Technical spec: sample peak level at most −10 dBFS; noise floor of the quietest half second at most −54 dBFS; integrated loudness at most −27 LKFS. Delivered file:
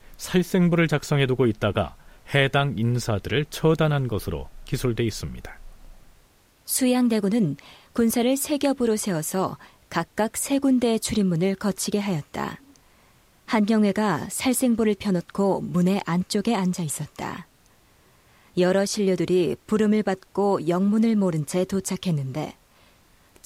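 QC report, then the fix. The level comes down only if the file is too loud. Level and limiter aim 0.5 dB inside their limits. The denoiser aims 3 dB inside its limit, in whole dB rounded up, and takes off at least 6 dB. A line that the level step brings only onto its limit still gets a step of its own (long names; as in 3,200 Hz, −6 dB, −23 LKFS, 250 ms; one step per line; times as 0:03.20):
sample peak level −7.0 dBFS: out of spec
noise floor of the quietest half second −58 dBFS: in spec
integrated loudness −23.5 LKFS: out of spec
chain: level −4 dB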